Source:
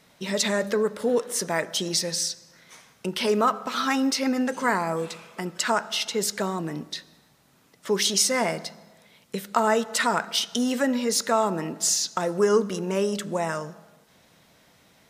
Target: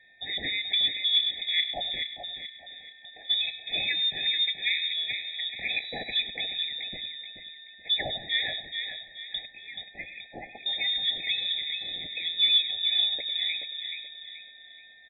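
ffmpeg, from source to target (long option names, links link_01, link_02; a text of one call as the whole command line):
ffmpeg -i in.wav -filter_complex "[0:a]asettb=1/sr,asplit=3[link_01][link_02][link_03];[link_01]atrim=end=9.464[link_04];[link_02]atrim=start=9.46:end=10.66,asetpts=PTS-STARTPTS,afade=type=in:duration=0.004:curve=qsin,afade=type=out:start_time=1.196:duration=0.004:curve=qsin,aderivative[link_05];[link_03]atrim=start=10.656[link_06];[link_04][link_05]acrossfade=duration=0.004:curve1=hsin:curve2=qsin[link_07];[link_07][link_06]acrossfade=duration=0.004:curve1=qsin:curve2=hsin,asplit=2[link_08][link_09];[link_09]aecho=0:1:102:0.15[link_10];[link_08][link_10]amix=inputs=2:normalize=0,asplit=3[link_11][link_12][link_13];[link_11]afade=type=out:start_time=2.02:duration=0.02[link_14];[link_12]acompressor=threshold=-44dB:ratio=5,afade=type=in:start_time=2.02:duration=0.02,afade=type=out:start_time=3.29:duration=0.02[link_15];[link_13]afade=type=in:start_time=3.29:duration=0.02[link_16];[link_14][link_15][link_16]amix=inputs=3:normalize=0,highpass=frequency=270:poles=1,aeval=exprs='val(0)+0.00158*sin(2*PI*2100*n/s)':channel_layout=same,acontrast=81,asplit=2[link_17][link_18];[link_18]adelay=429,lowpass=frequency=3000:poles=1,volume=-5dB,asplit=2[link_19][link_20];[link_20]adelay=429,lowpass=frequency=3000:poles=1,volume=0.42,asplit=2[link_21][link_22];[link_22]adelay=429,lowpass=frequency=3000:poles=1,volume=0.42,asplit=2[link_23][link_24];[link_24]adelay=429,lowpass=frequency=3000:poles=1,volume=0.42,asplit=2[link_25][link_26];[link_26]adelay=429,lowpass=frequency=3000:poles=1,volume=0.42[link_27];[link_19][link_21][link_23][link_25][link_27]amix=inputs=5:normalize=0[link_28];[link_17][link_28]amix=inputs=2:normalize=0,asplit=3[link_29][link_30][link_31];[link_29]afade=type=out:start_time=5.69:duration=0.02[link_32];[link_30]acrusher=bits=4:dc=4:mix=0:aa=0.000001,afade=type=in:start_time=5.69:duration=0.02,afade=type=out:start_time=6.11:duration=0.02[link_33];[link_31]afade=type=in:start_time=6.11:duration=0.02[link_34];[link_32][link_33][link_34]amix=inputs=3:normalize=0,lowpass=frequency=3300:width_type=q:width=0.5098,lowpass=frequency=3300:width_type=q:width=0.6013,lowpass=frequency=3300:width_type=q:width=0.9,lowpass=frequency=3300:width_type=q:width=2.563,afreqshift=-3900,afftfilt=real='re*eq(mod(floor(b*sr/1024/850),2),0)':imag='im*eq(mod(floor(b*sr/1024/850),2),0)':win_size=1024:overlap=0.75,volume=-7.5dB" out.wav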